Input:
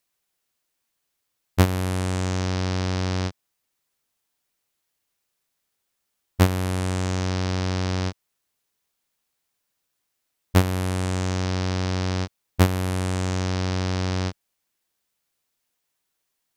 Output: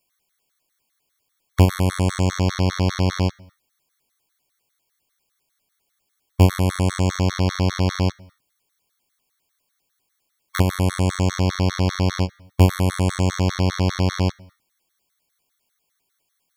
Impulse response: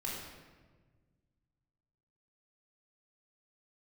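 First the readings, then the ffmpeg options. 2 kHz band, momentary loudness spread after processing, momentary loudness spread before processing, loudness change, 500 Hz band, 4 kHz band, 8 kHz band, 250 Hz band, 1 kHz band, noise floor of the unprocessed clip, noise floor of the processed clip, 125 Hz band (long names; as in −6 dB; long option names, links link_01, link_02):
+2.0 dB, 7 LU, 7 LU, +4.0 dB, +3.5 dB, +3.0 dB, +2.5 dB, +4.0 dB, +3.0 dB, −78 dBFS, −74 dBFS, +4.5 dB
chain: -filter_complex "[0:a]asoftclip=type=tanh:threshold=-13.5dB,asplit=2[link_01][link_02];[1:a]atrim=start_sample=2205,afade=type=out:start_time=0.33:duration=0.01,atrim=end_sample=14994[link_03];[link_02][link_03]afir=irnorm=-1:irlink=0,volume=-20dB[link_04];[link_01][link_04]amix=inputs=2:normalize=0,afftfilt=real='re*gt(sin(2*PI*5*pts/sr)*(1-2*mod(floor(b*sr/1024/1100),2)),0)':imag='im*gt(sin(2*PI*5*pts/sr)*(1-2*mod(floor(b*sr/1024/1100),2)),0)':win_size=1024:overlap=0.75,volume=7.5dB"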